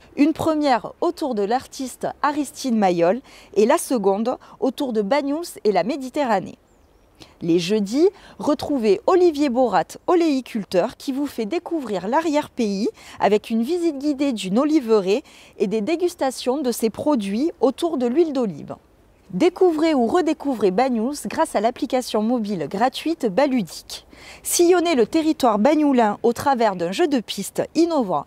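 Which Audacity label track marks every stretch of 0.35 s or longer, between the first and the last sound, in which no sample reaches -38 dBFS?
6.540000	7.210000	silence
18.770000	19.300000	silence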